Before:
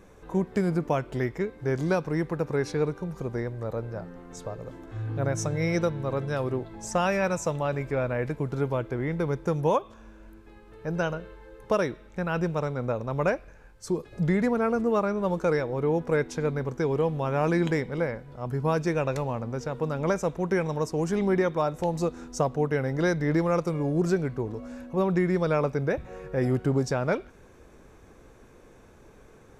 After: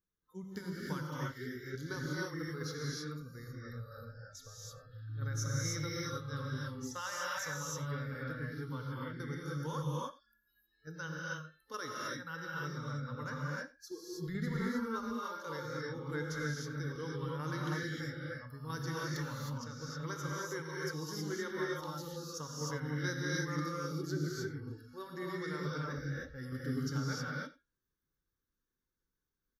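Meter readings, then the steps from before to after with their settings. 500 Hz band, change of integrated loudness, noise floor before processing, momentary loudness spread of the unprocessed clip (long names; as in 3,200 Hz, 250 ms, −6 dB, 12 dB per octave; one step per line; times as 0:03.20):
−17.0 dB, −12.0 dB, −53 dBFS, 9 LU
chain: noise reduction from a noise print of the clip's start 28 dB
first-order pre-emphasis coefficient 0.8
phaser with its sweep stopped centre 2,500 Hz, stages 6
shaped tremolo saw down 2.3 Hz, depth 50%
on a send: single-tap delay 90 ms −20 dB
on the sum: reverb whose tail is shaped and stops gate 340 ms rising, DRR −4.5 dB
level +2 dB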